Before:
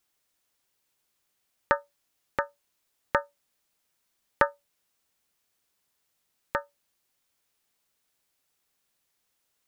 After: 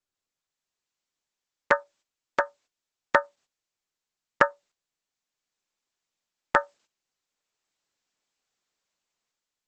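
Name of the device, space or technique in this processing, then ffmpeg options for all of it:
video call: -af "highpass=160,dynaudnorm=f=330:g=5:m=5.31,agate=range=0.158:threshold=0.00224:ratio=16:detection=peak,volume=0.891" -ar 48000 -c:a libopus -b:a 12k

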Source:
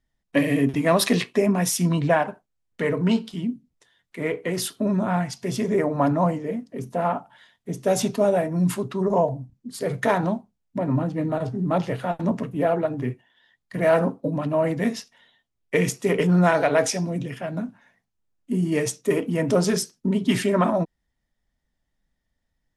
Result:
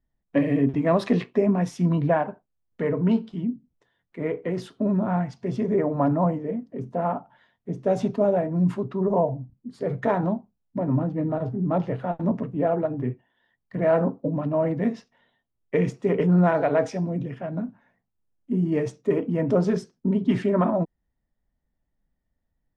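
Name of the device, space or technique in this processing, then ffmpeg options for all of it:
through cloth: -af "lowpass=6300,highshelf=f=2100:g=-17.5"

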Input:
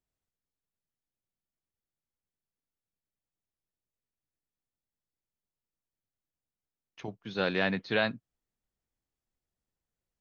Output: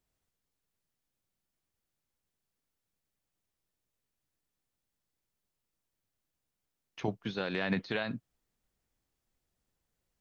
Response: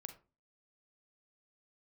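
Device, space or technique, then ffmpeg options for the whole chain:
de-esser from a sidechain: -filter_complex "[0:a]asplit=2[s0][s1];[s1]highpass=f=4100:w=0.5412,highpass=f=4100:w=1.3066,apad=whole_len=450103[s2];[s0][s2]sidechaincompress=threshold=0.00158:ratio=6:attack=4:release=58,volume=2.11"

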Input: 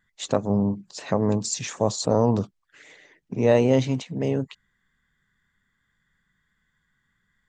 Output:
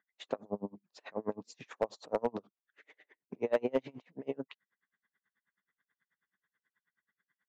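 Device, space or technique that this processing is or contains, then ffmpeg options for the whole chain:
helicopter radio: -af "highpass=330,lowpass=2600,aeval=exprs='val(0)*pow(10,-34*(0.5-0.5*cos(2*PI*9.3*n/s))/20)':c=same,asoftclip=type=hard:threshold=0.158,volume=0.668"

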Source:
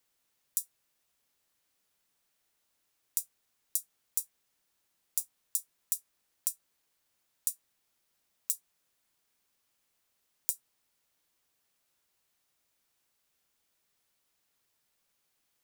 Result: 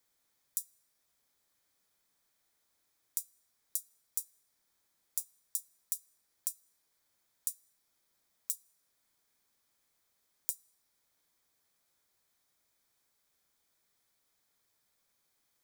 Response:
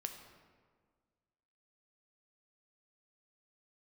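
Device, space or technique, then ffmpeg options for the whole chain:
ducked reverb: -filter_complex "[0:a]asplit=3[s0][s1][s2];[1:a]atrim=start_sample=2205[s3];[s1][s3]afir=irnorm=-1:irlink=0[s4];[s2]apad=whole_len=689516[s5];[s4][s5]sidechaincompress=threshold=0.00794:ratio=8:attack=24:release=422,volume=1.12[s6];[s0][s6]amix=inputs=2:normalize=0,bandreject=f=2800:w=5.8,volume=0.562"

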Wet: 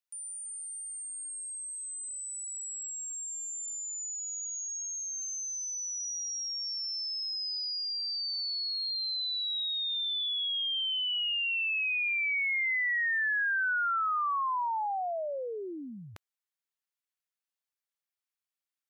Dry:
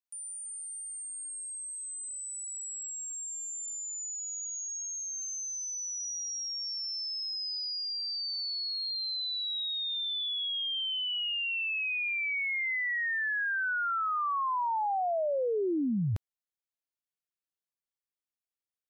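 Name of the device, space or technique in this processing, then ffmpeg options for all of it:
filter by subtraction: -filter_complex "[0:a]asplit=2[s0][s1];[s1]lowpass=1500,volume=-1[s2];[s0][s2]amix=inputs=2:normalize=0"

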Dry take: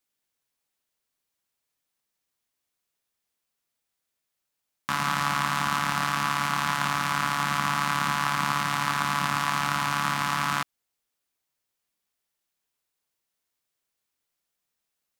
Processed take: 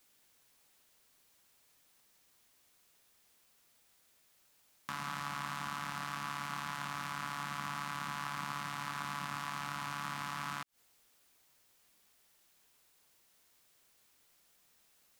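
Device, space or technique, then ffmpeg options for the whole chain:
de-esser from a sidechain: -filter_complex "[0:a]asplit=2[s0][s1];[s1]highpass=f=4300:p=1,apad=whole_len=670065[s2];[s0][s2]sidechaincompress=threshold=0.00251:ratio=10:attack=1.2:release=90,volume=4.47"

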